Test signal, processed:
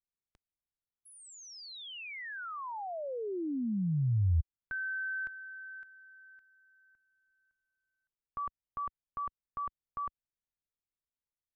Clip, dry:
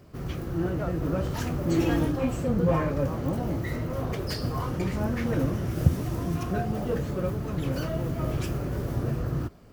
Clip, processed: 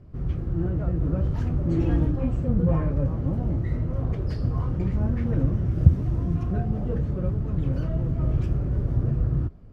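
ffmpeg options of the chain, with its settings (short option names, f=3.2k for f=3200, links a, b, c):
-af "aemphasis=mode=reproduction:type=riaa,volume=-7dB"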